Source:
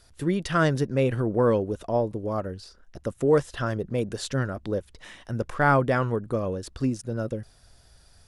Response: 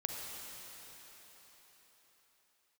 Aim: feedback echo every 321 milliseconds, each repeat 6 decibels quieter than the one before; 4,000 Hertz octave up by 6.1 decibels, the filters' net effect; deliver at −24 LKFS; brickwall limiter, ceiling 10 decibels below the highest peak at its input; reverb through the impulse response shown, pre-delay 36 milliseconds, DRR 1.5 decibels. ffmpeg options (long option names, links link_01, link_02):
-filter_complex "[0:a]equalizer=frequency=4000:width_type=o:gain=7.5,alimiter=limit=-17.5dB:level=0:latency=1,aecho=1:1:321|642|963|1284|1605|1926:0.501|0.251|0.125|0.0626|0.0313|0.0157,asplit=2[link_01][link_02];[1:a]atrim=start_sample=2205,adelay=36[link_03];[link_02][link_03]afir=irnorm=-1:irlink=0,volume=-3.5dB[link_04];[link_01][link_04]amix=inputs=2:normalize=0,volume=2dB"